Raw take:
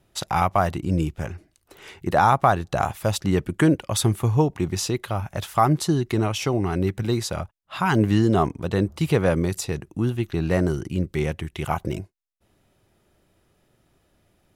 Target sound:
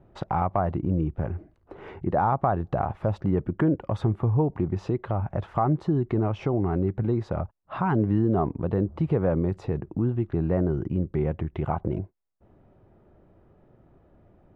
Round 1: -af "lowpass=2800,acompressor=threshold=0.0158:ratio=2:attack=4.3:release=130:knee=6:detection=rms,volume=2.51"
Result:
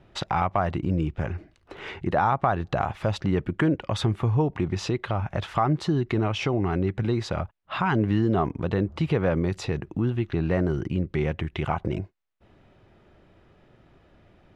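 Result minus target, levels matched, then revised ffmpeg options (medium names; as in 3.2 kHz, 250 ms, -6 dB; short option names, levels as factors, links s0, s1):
2 kHz band +8.0 dB
-af "lowpass=960,acompressor=threshold=0.0158:ratio=2:attack=4.3:release=130:knee=6:detection=rms,volume=2.51"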